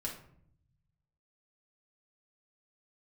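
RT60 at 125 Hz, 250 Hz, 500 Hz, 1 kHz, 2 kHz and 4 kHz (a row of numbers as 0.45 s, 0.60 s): 1.8 s, 1.2 s, 0.70 s, 0.55 s, 0.50 s, 0.35 s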